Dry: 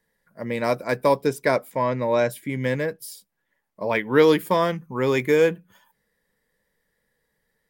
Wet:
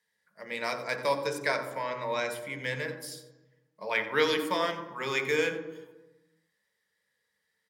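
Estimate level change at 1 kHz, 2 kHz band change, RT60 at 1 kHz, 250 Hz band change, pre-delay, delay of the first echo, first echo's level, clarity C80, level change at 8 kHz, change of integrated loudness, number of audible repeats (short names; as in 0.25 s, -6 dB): -7.0 dB, -2.5 dB, 1.0 s, -13.0 dB, 3 ms, 90 ms, -14.5 dB, 9.0 dB, -3.0 dB, -8.0 dB, 1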